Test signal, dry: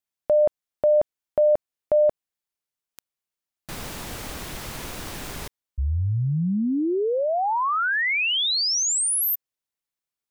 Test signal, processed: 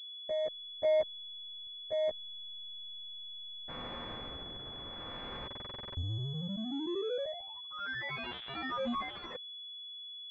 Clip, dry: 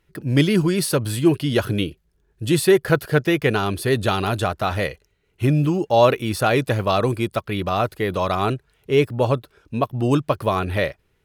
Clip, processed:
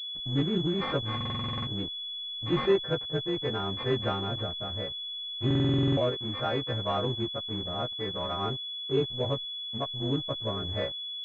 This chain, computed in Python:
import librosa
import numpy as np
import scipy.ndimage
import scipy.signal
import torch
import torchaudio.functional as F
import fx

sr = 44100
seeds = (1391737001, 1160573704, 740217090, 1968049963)

y = fx.freq_snap(x, sr, grid_st=2)
y = fx.rotary(y, sr, hz=0.7)
y = fx.backlash(y, sr, play_db=-24.5)
y = fx.buffer_glitch(y, sr, at_s=(1.16, 5.46), block=2048, repeats=10)
y = fx.pwm(y, sr, carrier_hz=3400.0)
y = y * 10.0 ** (-8.0 / 20.0)